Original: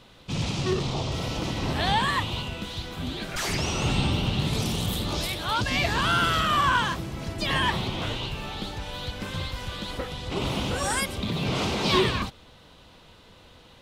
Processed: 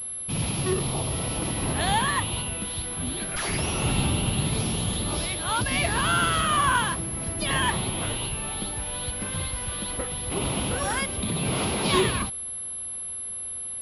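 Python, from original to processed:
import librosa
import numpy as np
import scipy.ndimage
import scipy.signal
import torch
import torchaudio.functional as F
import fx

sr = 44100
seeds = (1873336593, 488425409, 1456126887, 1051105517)

y = fx.pwm(x, sr, carrier_hz=11000.0)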